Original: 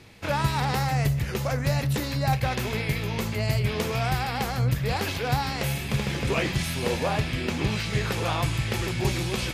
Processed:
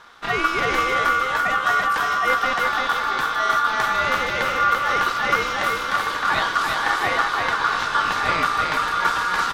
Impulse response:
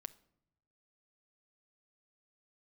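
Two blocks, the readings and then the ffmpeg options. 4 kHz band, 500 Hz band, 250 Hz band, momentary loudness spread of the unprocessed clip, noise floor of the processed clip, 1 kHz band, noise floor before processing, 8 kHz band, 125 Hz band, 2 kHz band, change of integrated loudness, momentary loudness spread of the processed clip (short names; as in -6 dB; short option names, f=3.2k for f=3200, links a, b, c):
+4.5 dB, +1.5 dB, -5.5 dB, 3 LU, -26 dBFS, +12.0 dB, -32 dBFS, +1.0 dB, -16.0 dB, +12.0 dB, +6.5 dB, 2 LU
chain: -filter_complex "[0:a]highshelf=f=4.5k:g=-9.5,aeval=exprs='val(0)*sin(2*PI*1300*n/s)':c=same,asplit=2[a][b];[b]aecho=0:1:339|678|1017|1356|1695:0.668|0.254|0.0965|0.0367|0.0139[c];[a][c]amix=inputs=2:normalize=0,volume=6.5dB"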